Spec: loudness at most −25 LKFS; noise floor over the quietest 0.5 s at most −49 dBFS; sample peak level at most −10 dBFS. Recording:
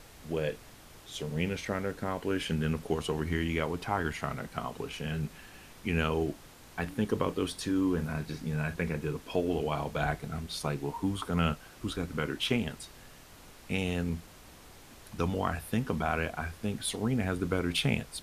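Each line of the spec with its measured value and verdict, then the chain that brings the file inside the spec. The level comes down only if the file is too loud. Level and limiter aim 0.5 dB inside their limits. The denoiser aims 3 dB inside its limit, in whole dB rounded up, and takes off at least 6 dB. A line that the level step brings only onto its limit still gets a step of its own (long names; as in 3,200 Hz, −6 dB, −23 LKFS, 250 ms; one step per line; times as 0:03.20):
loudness −33.0 LKFS: in spec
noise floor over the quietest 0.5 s −52 dBFS: in spec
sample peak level −13.5 dBFS: in spec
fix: no processing needed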